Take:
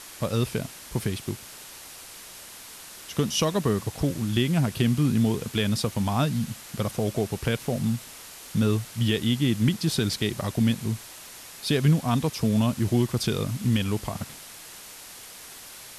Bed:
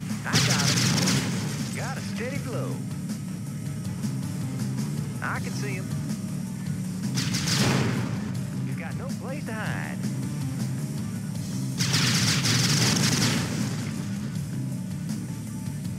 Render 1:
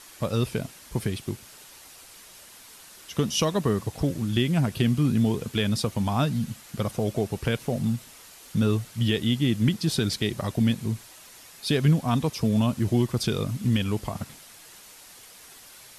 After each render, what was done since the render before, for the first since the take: denoiser 6 dB, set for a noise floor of -44 dBFS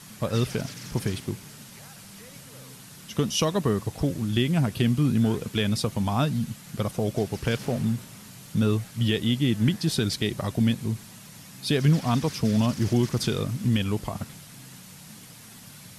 add bed -18 dB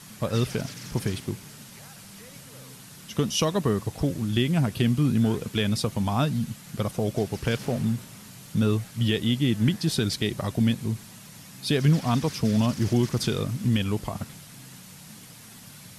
nothing audible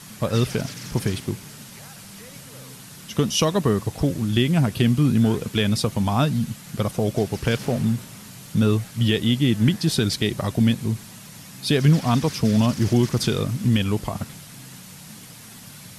gain +4 dB

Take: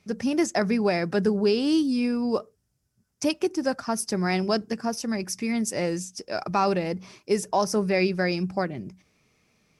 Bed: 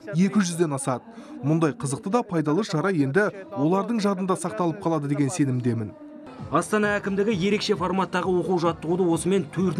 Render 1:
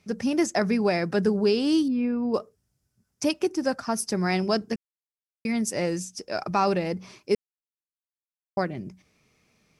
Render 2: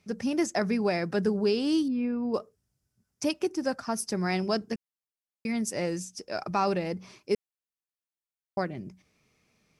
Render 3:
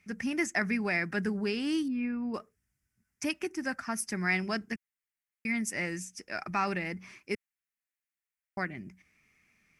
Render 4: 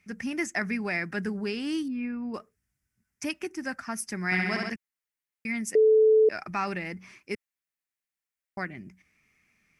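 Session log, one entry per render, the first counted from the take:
1.88–2.34 air absorption 480 m; 4.76–5.45 mute; 7.35–8.57 mute
gain -3.5 dB
ten-band EQ 125 Hz -6 dB, 500 Hz -11 dB, 1000 Hz -4 dB, 2000 Hz +11 dB, 4000 Hz -9 dB
4.25–4.7 flutter echo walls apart 11.3 m, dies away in 1.4 s; 5.75–6.29 bleep 436 Hz -15.5 dBFS

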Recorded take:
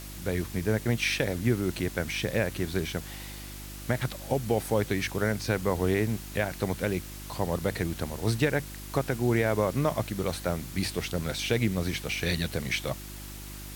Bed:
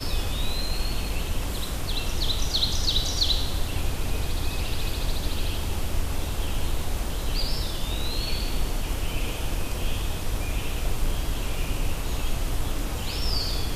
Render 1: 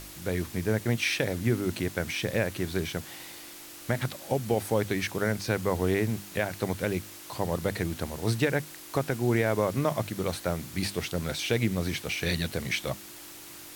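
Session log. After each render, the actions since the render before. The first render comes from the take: de-hum 50 Hz, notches 5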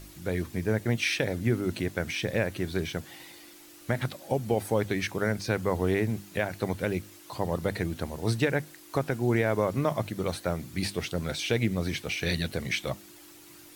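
denoiser 8 dB, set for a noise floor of -46 dBFS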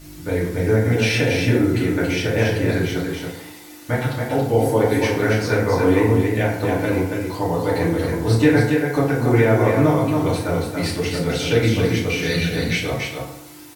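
echo 0.279 s -4.5 dB; FDN reverb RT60 0.81 s, low-frequency decay 0.95×, high-frequency decay 0.55×, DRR -7 dB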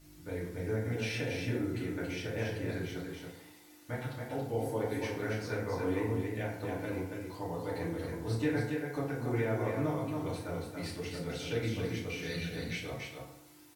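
gain -16.5 dB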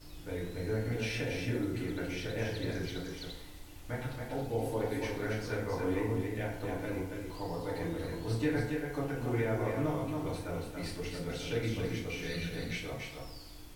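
add bed -24 dB

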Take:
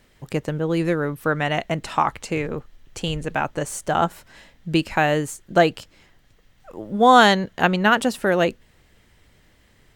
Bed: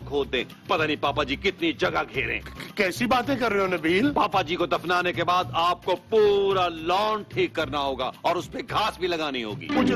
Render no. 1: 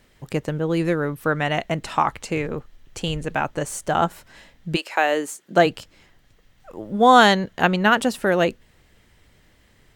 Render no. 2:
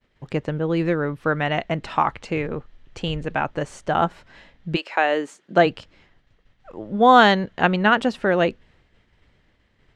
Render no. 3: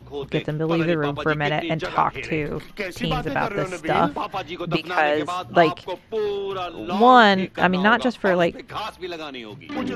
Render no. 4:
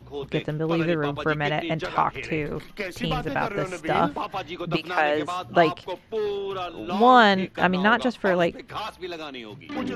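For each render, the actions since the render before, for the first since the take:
4.75–5.65 HPF 530 Hz -> 140 Hz 24 dB/oct
LPF 3900 Hz 12 dB/oct; expander -51 dBFS
add bed -5.5 dB
gain -2.5 dB

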